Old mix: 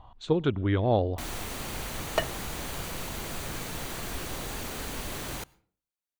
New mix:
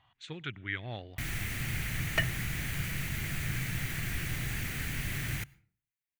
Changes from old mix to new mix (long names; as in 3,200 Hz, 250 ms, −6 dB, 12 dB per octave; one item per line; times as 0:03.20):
speech: add high-pass filter 1,400 Hz 6 dB per octave
master: add octave-band graphic EQ 125/250/500/1,000/2,000/4,000/8,000 Hz +11/−3/−11/−12/+11/−6/−3 dB